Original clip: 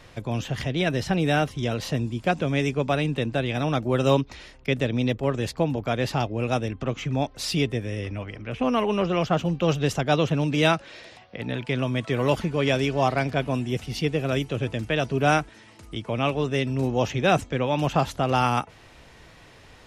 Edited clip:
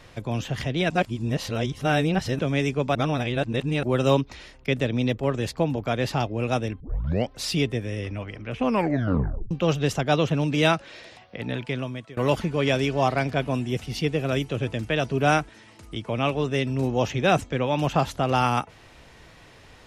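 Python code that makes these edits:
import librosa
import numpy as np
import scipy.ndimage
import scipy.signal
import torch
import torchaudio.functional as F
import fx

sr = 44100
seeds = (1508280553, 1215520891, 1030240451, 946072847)

y = fx.edit(x, sr, fx.reverse_span(start_s=0.9, length_s=1.49),
    fx.reverse_span(start_s=2.95, length_s=0.88),
    fx.tape_start(start_s=6.8, length_s=0.5),
    fx.tape_stop(start_s=8.67, length_s=0.84),
    fx.fade_out_to(start_s=11.56, length_s=0.61, floor_db=-23.5), tone=tone)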